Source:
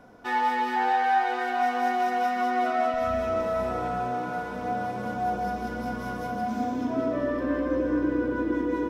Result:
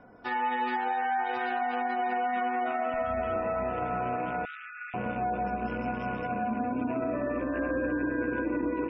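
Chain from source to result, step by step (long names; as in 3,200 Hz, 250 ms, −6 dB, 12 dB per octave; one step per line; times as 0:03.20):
loose part that buzzes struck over −45 dBFS, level −34 dBFS
Butterworth low-pass 6,000 Hz 96 dB per octave
on a send: feedback delay with all-pass diffusion 661 ms, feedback 51%, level −14 dB
on the sum: brickwall limiter −22.5 dBFS, peak gain reduction 8.5 dB
harmonic generator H 3 −21 dB, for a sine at −22.5 dBFS
gate on every frequency bin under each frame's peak −30 dB strong
0:04.45–0:04.94: linear-phase brick-wall high-pass 1,200 Hz
0:07.53–0:08.44: steady tone 1,600 Hz −38 dBFS
level +1 dB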